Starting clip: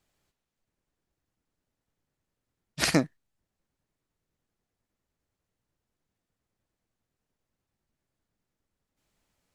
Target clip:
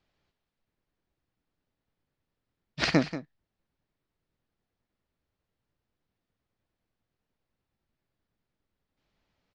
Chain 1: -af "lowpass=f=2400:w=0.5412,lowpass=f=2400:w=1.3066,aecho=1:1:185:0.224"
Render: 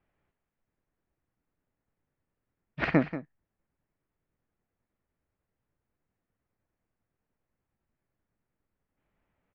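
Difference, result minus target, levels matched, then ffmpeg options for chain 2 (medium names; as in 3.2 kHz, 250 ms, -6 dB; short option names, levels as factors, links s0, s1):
4 kHz band -13.0 dB
-af "lowpass=f=4900:w=0.5412,lowpass=f=4900:w=1.3066,aecho=1:1:185:0.224"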